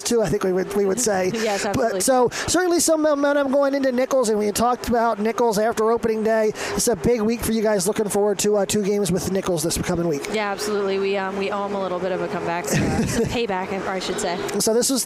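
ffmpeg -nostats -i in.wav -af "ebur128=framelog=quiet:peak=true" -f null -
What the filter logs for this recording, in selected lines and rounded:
Integrated loudness:
  I:         -20.9 LUFS
  Threshold: -30.9 LUFS
Loudness range:
  LRA:         4.0 LU
  Threshold: -40.8 LUFS
  LRA low:   -23.3 LUFS
  LRA high:  -19.3 LUFS
True peak:
  Peak:       -5.0 dBFS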